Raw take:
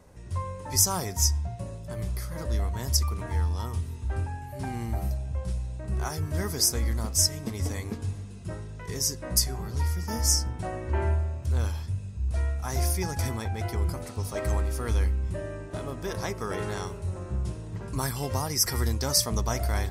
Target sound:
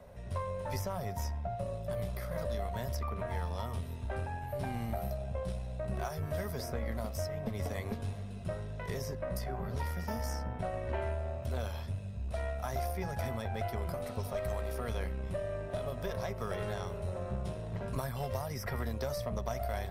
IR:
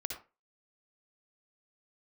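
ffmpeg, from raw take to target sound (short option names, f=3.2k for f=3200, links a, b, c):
-filter_complex "[0:a]superequalizer=6b=0.355:8b=2.51:14b=0.501:15b=0.316:16b=0.501,acrossover=split=150|2600[a][b][c];[a]acompressor=threshold=-39dB:ratio=4[d];[b]acompressor=threshold=-36dB:ratio=4[e];[c]acompressor=threshold=-51dB:ratio=4[f];[d][e][f]amix=inputs=3:normalize=0,aeval=exprs='0.1*(cos(1*acos(clip(val(0)/0.1,-1,1)))-cos(1*PI/2))+0.00562*(cos(6*acos(clip(val(0)/0.1,-1,1)))-cos(6*PI/2))':c=same"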